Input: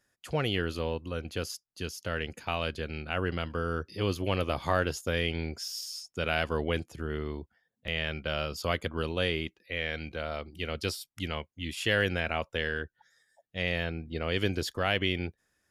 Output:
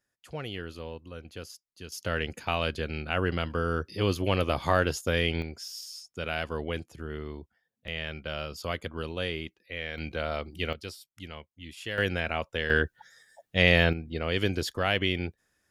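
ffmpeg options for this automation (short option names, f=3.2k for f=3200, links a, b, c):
-af "asetnsamples=n=441:p=0,asendcmd='1.92 volume volume 3dB;5.42 volume volume -3dB;9.98 volume volume 3.5dB;10.73 volume volume -8dB;11.98 volume volume 0.5dB;12.7 volume volume 10dB;13.93 volume volume 1.5dB',volume=-7.5dB"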